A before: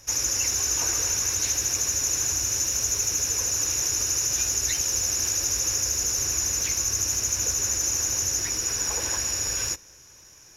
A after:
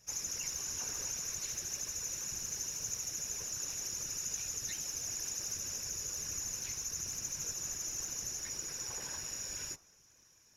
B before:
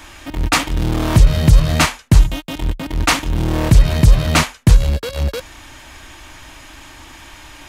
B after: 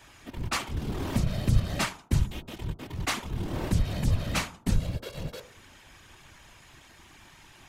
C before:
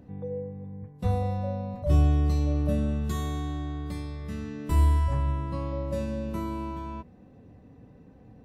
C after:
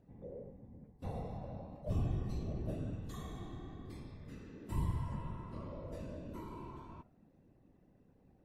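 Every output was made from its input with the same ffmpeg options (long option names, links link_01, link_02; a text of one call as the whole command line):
ffmpeg -i in.wav -af "bandreject=frequency=50.91:width_type=h:width=4,bandreject=frequency=101.82:width_type=h:width=4,bandreject=frequency=152.73:width_type=h:width=4,bandreject=frequency=203.64:width_type=h:width=4,bandreject=frequency=254.55:width_type=h:width=4,bandreject=frequency=305.46:width_type=h:width=4,bandreject=frequency=356.37:width_type=h:width=4,bandreject=frequency=407.28:width_type=h:width=4,bandreject=frequency=458.19:width_type=h:width=4,bandreject=frequency=509.1:width_type=h:width=4,bandreject=frequency=560.01:width_type=h:width=4,bandreject=frequency=610.92:width_type=h:width=4,bandreject=frequency=661.83:width_type=h:width=4,bandreject=frequency=712.74:width_type=h:width=4,bandreject=frequency=763.65:width_type=h:width=4,bandreject=frequency=814.56:width_type=h:width=4,bandreject=frequency=865.47:width_type=h:width=4,bandreject=frequency=916.38:width_type=h:width=4,bandreject=frequency=967.29:width_type=h:width=4,bandreject=frequency=1018.2:width_type=h:width=4,bandreject=frequency=1069.11:width_type=h:width=4,bandreject=frequency=1120.02:width_type=h:width=4,bandreject=frequency=1170.93:width_type=h:width=4,bandreject=frequency=1221.84:width_type=h:width=4,bandreject=frequency=1272.75:width_type=h:width=4,bandreject=frequency=1323.66:width_type=h:width=4,bandreject=frequency=1374.57:width_type=h:width=4,bandreject=frequency=1425.48:width_type=h:width=4,bandreject=frequency=1476.39:width_type=h:width=4,afftfilt=real='hypot(re,im)*cos(2*PI*random(0))':imag='hypot(re,im)*sin(2*PI*random(1))':win_size=512:overlap=0.75,volume=-8dB" out.wav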